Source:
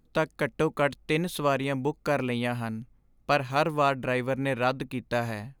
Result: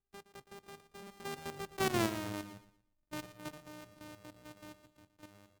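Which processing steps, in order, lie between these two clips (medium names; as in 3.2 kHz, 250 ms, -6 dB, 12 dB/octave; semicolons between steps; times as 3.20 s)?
sorted samples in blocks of 128 samples; Doppler pass-by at 1.99 s, 47 m/s, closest 7.1 m; level held to a coarse grid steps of 10 dB; feedback delay 117 ms, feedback 31%, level -14 dB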